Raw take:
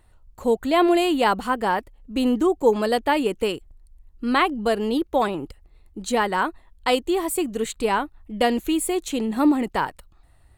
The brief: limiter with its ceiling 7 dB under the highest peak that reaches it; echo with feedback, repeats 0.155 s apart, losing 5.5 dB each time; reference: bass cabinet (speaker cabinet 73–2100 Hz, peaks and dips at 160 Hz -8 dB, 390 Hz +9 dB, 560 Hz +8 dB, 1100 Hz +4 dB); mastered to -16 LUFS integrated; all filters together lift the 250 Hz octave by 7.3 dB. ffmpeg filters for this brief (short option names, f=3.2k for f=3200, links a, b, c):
-af "equalizer=f=250:t=o:g=6.5,alimiter=limit=-12dB:level=0:latency=1,highpass=f=73:w=0.5412,highpass=f=73:w=1.3066,equalizer=f=160:t=q:w=4:g=-8,equalizer=f=390:t=q:w=4:g=9,equalizer=f=560:t=q:w=4:g=8,equalizer=f=1.1k:t=q:w=4:g=4,lowpass=f=2.1k:w=0.5412,lowpass=f=2.1k:w=1.3066,aecho=1:1:155|310|465|620|775|930|1085:0.531|0.281|0.149|0.079|0.0419|0.0222|0.0118,volume=1dB"